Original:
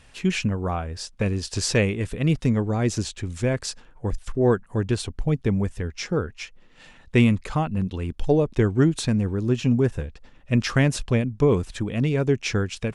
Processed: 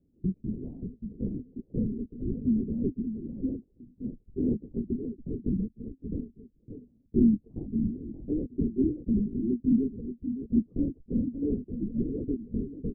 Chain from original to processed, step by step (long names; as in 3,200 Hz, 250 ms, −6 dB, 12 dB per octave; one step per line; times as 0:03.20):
inverse Chebyshev low-pass filter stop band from 1,500 Hz, stop band 70 dB
low shelf with overshoot 150 Hz −13.5 dB, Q 3
on a send: single-tap delay 575 ms −9 dB
on the sum: linear-prediction vocoder at 8 kHz whisper
level −8.5 dB